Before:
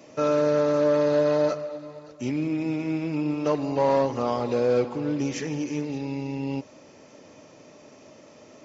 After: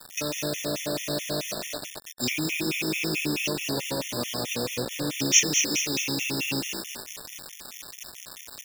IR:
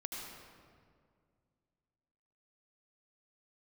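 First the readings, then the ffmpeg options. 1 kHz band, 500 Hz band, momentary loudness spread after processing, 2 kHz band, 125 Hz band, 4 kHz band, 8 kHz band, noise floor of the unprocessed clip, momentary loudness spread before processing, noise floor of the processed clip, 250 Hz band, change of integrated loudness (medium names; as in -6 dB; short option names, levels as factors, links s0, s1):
-9.0 dB, -10.5 dB, 17 LU, +8.5 dB, -3.5 dB, +15.0 dB, no reading, -51 dBFS, 10 LU, -46 dBFS, -5.0 dB, -1.5 dB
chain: -filter_complex "[0:a]highpass=76,acrossover=split=270[s0][s1];[s1]acompressor=threshold=0.0282:ratio=20[s2];[s0][s2]amix=inputs=2:normalize=0,asplit=7[s3][s4][s5][s6][s7][s8][s9];[s4]adelay=211,afreqshift=56,volume=0.447[s10];[s5]adelay=422,afreqshift=112,volume=0.214[s11];[s6]adelay=633,afreqshift=168,volume=0.102[s12];[s7]adelay=844,afreqshift=224,volume=0.0495[s13];[s8]adelay=1055,afreqshift=280,volume=0.0237[s14];[s9]adelay=1266,afreqshift=336,volume=0.0114[s15];[s3][s10][s11][s12][s13][s14][s15]amix=inputs=7:normalize=0,aexciter=amount=10.9:drive=5.2:freq=2100,acrusher=bits=4:mix=0:aa=0.000001,afftfilt=real='re*gt(sin(2*PI*4.6*pts/sr)*(1-2*mod(floor(b*sr/1024/1800),2)),0)':imag='im*gt(sin(2*PI*4.6*pts/sr)*(1-2*mod(floor(b*sr/1024/1800),2)),0)':win_size=1024:overlap=0.75"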